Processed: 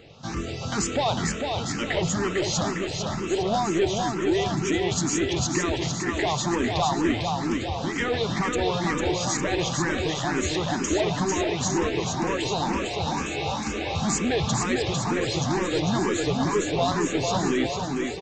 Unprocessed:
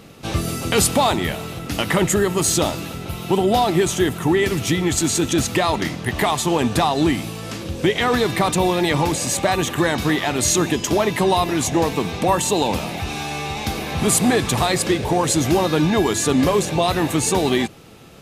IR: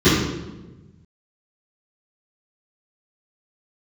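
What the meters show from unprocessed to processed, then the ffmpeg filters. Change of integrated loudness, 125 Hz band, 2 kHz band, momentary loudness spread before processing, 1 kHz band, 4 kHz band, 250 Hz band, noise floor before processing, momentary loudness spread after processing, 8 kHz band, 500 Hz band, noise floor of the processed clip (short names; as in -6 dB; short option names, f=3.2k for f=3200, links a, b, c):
-6.0 dB, -5.0 dB, -5.0 dB, 8 LU, -6.0 dB, -5.5 dB, -5.5 dB, -32 dBFS, 4 LU, -7.5 dB, -6.0 dB, -31 dBFS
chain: -filter_complex "[0:a]aresample=16000,asoftclip=type=tanh:threshold=-15dB,aresample=44100,aecho=1:1:450|855|1220|1548|1843:0.631|0.398|0.251|0.158|0.1,asplit=2[a][b];[b]afreqshift=2.1[c];[a][c]amix=inputs=2:normalize=1,volume=-2dB"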